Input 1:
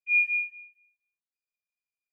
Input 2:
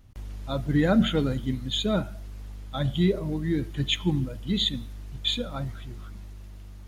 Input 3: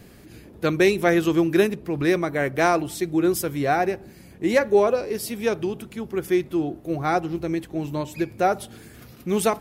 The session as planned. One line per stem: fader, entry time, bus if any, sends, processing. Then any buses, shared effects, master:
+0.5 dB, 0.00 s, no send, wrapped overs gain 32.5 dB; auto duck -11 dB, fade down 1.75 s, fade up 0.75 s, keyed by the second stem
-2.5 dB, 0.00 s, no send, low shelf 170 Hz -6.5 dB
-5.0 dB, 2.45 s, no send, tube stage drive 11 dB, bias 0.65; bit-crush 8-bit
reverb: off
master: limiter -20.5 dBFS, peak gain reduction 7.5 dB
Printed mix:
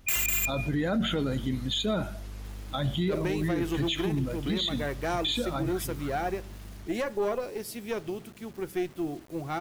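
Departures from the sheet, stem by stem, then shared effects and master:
stem 1 +0.5 dB -> +12.0 dB; stem 2 -2.5 dB -> +5.0 dB

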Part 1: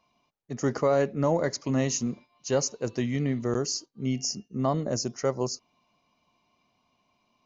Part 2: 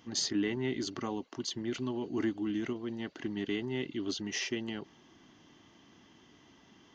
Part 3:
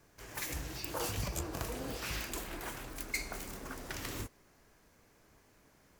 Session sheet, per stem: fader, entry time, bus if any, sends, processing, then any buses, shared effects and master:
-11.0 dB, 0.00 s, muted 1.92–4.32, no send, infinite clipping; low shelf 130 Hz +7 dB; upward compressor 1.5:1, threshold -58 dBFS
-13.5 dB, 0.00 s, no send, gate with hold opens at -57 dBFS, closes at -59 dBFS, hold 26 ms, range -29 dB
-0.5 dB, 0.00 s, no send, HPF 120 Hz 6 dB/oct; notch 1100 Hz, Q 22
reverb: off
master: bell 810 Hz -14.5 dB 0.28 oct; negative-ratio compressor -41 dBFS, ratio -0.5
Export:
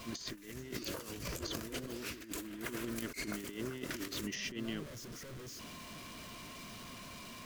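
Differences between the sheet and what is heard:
stem 1 -11.0 dB -> -22.5 dB; stem 2 -13.5 dB -> -4.5 dB

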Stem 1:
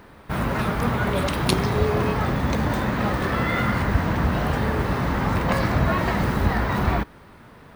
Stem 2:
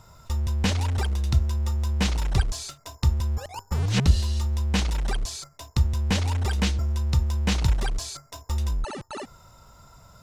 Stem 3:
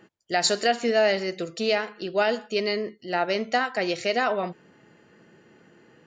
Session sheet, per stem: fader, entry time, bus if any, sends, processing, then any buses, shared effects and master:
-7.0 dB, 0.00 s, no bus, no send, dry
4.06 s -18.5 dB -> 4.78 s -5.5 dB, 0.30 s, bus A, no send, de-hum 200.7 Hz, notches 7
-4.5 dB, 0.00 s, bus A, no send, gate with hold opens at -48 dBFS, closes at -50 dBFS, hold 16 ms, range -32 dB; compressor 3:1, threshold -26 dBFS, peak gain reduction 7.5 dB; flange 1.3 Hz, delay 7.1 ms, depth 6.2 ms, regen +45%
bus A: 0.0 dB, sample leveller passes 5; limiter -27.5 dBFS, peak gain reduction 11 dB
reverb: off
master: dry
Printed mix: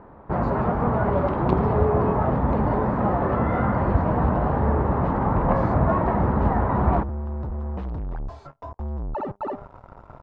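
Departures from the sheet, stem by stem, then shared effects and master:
stem 1 -7.0 dB -> 0.0 dB; master: extra synth low-pass 910 Hz, resonance Q 1.5

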